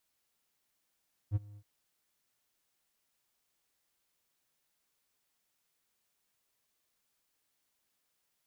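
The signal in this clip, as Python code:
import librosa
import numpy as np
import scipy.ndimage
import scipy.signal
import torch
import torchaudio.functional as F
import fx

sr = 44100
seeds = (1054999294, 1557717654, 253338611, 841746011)

y = fx.adsr_tone(sr, wave='triangle', hz=103.0, attack_ms=47.0, decay_ms=25.0, sustain_db=-23.5, held_s=0.26, release_ms=60.0, level_db=-22.5)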